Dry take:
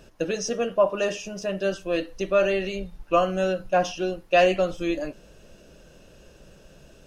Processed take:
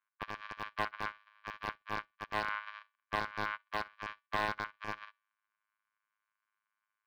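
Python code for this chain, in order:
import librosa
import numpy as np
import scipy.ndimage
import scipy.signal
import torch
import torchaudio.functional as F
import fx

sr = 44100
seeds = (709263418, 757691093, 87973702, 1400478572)

p1 = np.r_[np.sort(x[:len(x) // 256 * 256].reshape(-1, 256), axis=1).ravel(), x[len(x) // 256 * 256:]]
p2 = fx.env_lowpass(p1, sr, base_hz=2200.0, full_db=-19.0)
p3 = scipy.signal.sosfilt(scipy.signal.butter(12, 1000.0, 'highpass', fs=sr, output='sos'), p2)
p4 = fx.env_lowpass_down(p3, sr, base_hz=2100.0, full_db=-26.5)
p5 = fx.pitch_keep_formants(p4, sr, semitones=-8.5)
p6 = (np.mod(10.0 ** (20.0 / 20.0) * p5 + 1.0, 2.0) - 1.0) / 10.0 ** (20.0 / 20.0)
p7 = fx.air_absorb(p6, sr, metres=350.0)
p8 = p7 + fx.echo_feedback(p7, sr, ms=63, feedback_pct=24, wet_db=-15.5, dry=0)
p9 = fx.upward_expand(p8, sr, threshold_db=-53.0, expansion=2.5)
y = p9 * librosa.db_to_amplitude(5.0)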